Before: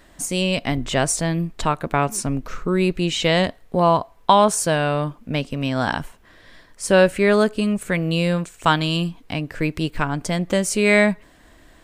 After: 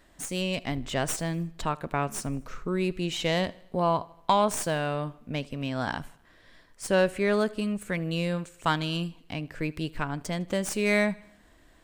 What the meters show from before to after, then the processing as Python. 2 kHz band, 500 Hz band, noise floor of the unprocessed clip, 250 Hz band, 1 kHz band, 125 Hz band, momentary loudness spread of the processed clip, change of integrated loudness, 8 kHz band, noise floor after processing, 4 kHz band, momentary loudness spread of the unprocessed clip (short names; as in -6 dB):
-8.5 dB, -8.5 dB, -52 dBFS, -8.5 dB, -8.5 dB, -8.5 dB, 10 LU, -8.5 dB, -10.0 dB, -59 dBFS, -8.5 dB, 10 LU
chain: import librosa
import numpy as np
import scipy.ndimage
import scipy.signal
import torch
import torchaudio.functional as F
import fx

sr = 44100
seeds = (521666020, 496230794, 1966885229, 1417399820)

p1 = fx.tracing_dist(x, sr, depth_ms=0.035)
p2 = p1 + fx.echo_feedback(p1, sr, ms=78, feedback_pct=53, wet_db=-23, dry=0)
y = p2 * 10.0 ** (-8.5 / 20.0)